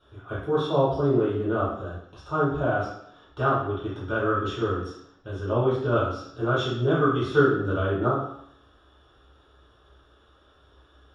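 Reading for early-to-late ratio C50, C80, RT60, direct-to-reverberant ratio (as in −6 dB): 1.5 dB, 6.0 dB, 0.70 s, −9.5 dB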